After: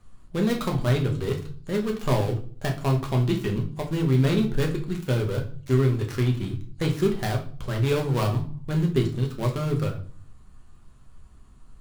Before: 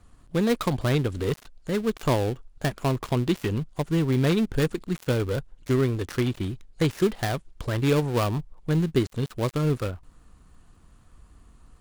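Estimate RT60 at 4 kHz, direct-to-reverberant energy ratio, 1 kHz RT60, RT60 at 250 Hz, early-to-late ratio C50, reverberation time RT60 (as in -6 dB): 0.40 s, 1.0 dB, 0.40 s, 0.70 s, 10.5 dB, 0.45 s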